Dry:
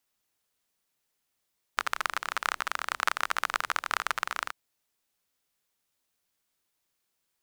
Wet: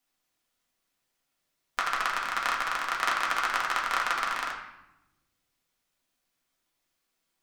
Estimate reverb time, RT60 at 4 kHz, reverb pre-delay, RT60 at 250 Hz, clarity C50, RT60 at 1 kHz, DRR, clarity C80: 0.90 s, 0.70 s, 4 ms, 1.5 s, 5.0 dB, 0.85 s, -3.5 dB, 7.5 dB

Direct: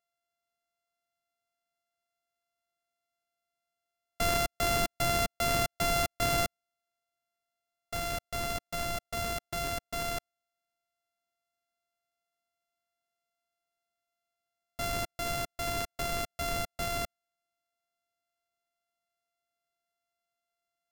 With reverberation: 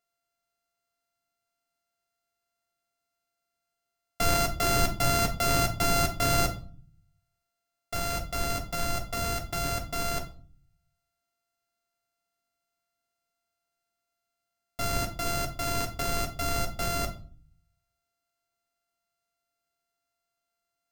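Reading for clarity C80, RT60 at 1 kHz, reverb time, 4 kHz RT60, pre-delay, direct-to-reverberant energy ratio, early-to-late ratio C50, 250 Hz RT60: 18.0 dB, 0.40 s, 0.45 s, 0.35 s, 7 ms, 3.5 dB, 13.0 dB, 0.75 s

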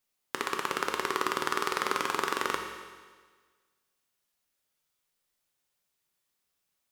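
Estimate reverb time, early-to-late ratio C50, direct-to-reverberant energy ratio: 1.5 s, 5.5 dB, 3.0 dB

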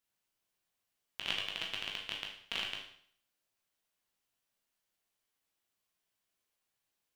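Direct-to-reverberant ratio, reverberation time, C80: -1.5 dB, 0.60 s, 8.5 dB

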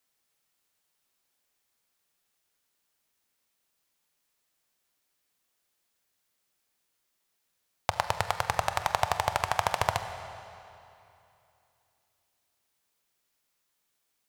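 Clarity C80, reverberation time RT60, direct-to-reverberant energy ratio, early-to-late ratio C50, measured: 9.5 dB, 2.8 s, 8.0 dB, 9.0 dB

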